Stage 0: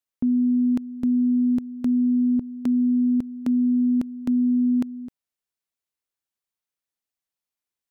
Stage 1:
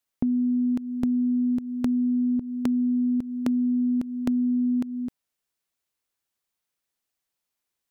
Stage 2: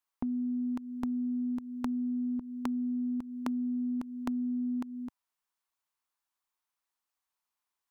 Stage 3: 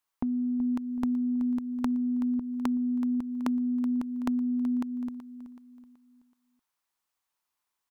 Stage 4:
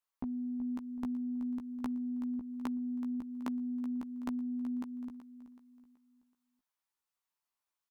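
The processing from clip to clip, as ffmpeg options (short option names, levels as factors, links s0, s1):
-af "acompressor=threshold=0.0398:ratio=6,volume=1.88"
-af "equalizer=f=125:t=o:w=1:g=-11,equalizer=f=500:t=o:w=1:g=-6,equalizer=f=1000:t=o:w=1:g=11,volume=0.501"
-af "aecho=1:1:377|754|1131|1508:0.224|0.0873|0.0341|0.0133,volume=1.5"
-filter_complex "[0:a]asplit=2[s0][s1];[s1]adelay=15,volume=0.631[s2];[s0][s2]amix=inputs=2:normalize=0,volume=0.376"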